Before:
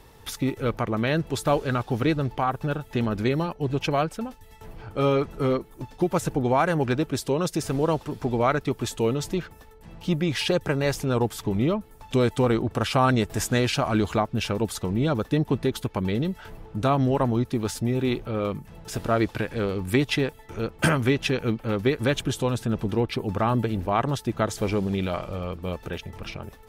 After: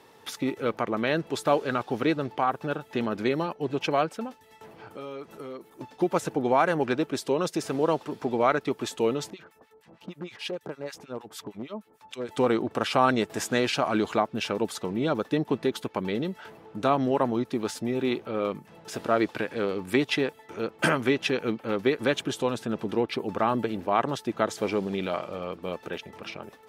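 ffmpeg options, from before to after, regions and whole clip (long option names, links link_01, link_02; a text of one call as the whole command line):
ffmpeg -i in.wav -filter_complex "[0:a]asettb=1/sr,asplit=3[link_01][link_02][link_03];[link_01]atrim=end=4.874[link_04];[link_02]atrim=start=4.87:end=5.7,asetpts=PTS-STARTPTS,afade=type=in:duration=0.004:curve=qsin,afade=type=out:start_time=0.826:duration=0.004:curve=qsin,highshelf=frequency=6500:gain=10.5,acompressor=threshold=-37dB:ratio=4:attack=3.2:release=140:knee=1:detection=peak[link_05];[link_03]atrim=start=5.696[link_06];[link_04][link_05]acrossfade=duration=0.004:curve1=hsin:curve2=qsin[link_07];[link_07][link_06]acrossfade=duration=0.004:curve1=qsin:curve2=hsin,asettb=1/sr,asplit=3[link_08][link_09][link_10];[link_08]atrim=end=9.304[link_11];[link_09]atrim=start=9.3:end=12.29,asetpts=PTS-STARTPTS,afade=type=in:duration=0.004:curve=qsin,afade=type=out:start_time=2.986:duration=0.004:curve=qsin,acompressor=threshold=-29dB:ratio=2.5:attack=3.2:release=140:knee=1:detection=peak,acrossover=split=1200[link_12][link_13];[link_12]aeval=exprs='val(0)*(1-1/2+1/2*cos(2*PI*6.5*n/s))':channel_layout=same[link_14];[link_13]aeval=exprs='val(0)*(1-1/2-1/2*cos(2*PI*6.5*n/s))':channel_layout=same[link_15];[link_14][link_15]amix=inputs=2:normalize=0,aeval=exprs='0.0596*(abs(mod(val(0)/0.0596+3,4)-2)-1)':channel_layout=same[link_16];[link_10]atrim=start=12.286[link_17];[link_11][link_16]acrossfade=duration=0.004:curve1=hsin:curve2=qsin[link_18];[link_18][link_17]acrossfade=duration=0.004:curve1=qsin:curve2=hsin,highpass=240,highshelf=frequency=7700:gain=-8.5" out.wav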